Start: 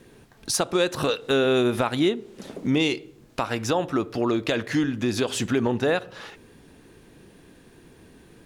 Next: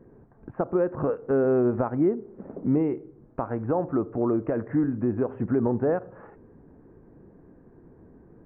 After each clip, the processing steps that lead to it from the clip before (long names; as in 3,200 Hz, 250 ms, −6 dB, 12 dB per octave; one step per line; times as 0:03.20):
Gaussian smoothing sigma 7.3 samples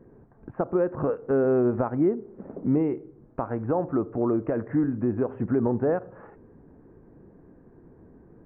no processing that can be heard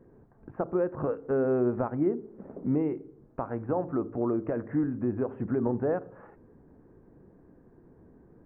hum removal 55.04 Hz, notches 8
level −3.5 dB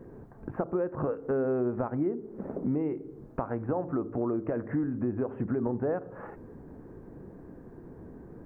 downward compressor 2.5 to 1, threshold −41 dBFS, peak gain reduction 13 dB
level +9 dB